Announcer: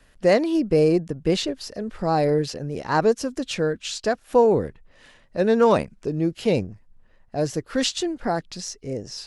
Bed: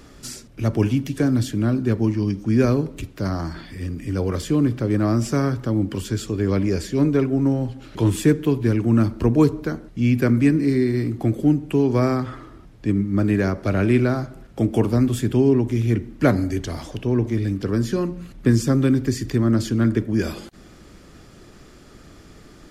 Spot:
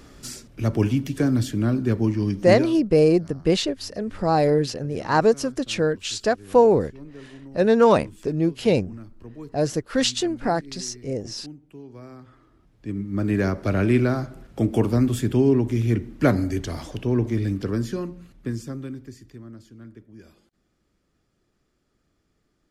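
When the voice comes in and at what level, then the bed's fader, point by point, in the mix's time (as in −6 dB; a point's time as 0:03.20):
2.20 s, +1.5 dB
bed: 0:02.54 −1.5 dB
0:02.75 −23.5 dB
0:12.03 −23.5 dB
0:13.42 −1.5 dB
0:17.57 −1.5 dB
0:19.64 −25 dB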